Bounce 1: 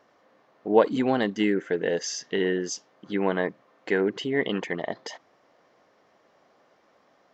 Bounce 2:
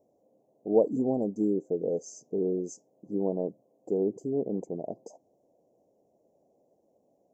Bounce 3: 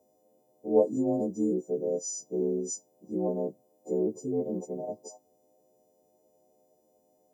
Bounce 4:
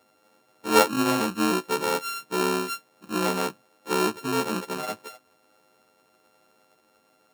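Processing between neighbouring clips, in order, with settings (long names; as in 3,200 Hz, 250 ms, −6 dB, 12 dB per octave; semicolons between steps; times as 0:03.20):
inverse Chebyshev band-stop filter 1,300–4,000 Hz, stop band 50 dB; level −3 dB
every partial snapped to a pitch grid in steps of 3 semitones
samples sorted by size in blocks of 32 samples; level +4 dB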